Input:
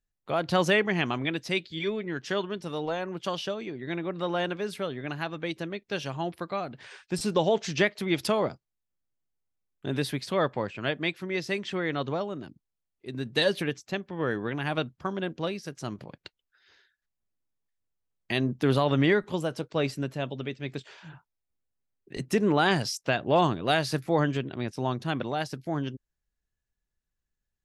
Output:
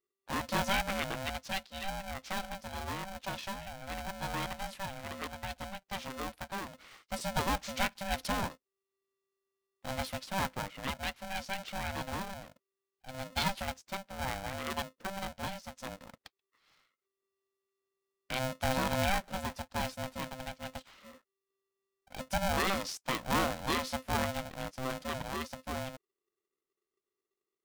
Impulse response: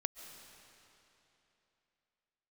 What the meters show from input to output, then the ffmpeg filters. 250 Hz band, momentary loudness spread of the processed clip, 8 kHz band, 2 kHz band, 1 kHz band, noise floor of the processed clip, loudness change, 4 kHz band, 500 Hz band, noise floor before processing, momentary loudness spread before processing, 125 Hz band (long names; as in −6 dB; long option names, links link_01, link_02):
−10.5 dB, 13 LU, +0.5 dB, −5.5 dB, −3.5 dB, below −85 dBFS, −7.0 dB, −5.0 dB, −11.5 dB, −84 dBFS, 12 LU, −9.0 dB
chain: -af "aeval=exprs='val(0)*sgn(sin(2*PI*390*n/s))':channel_layout=same,volume=-7.5dB"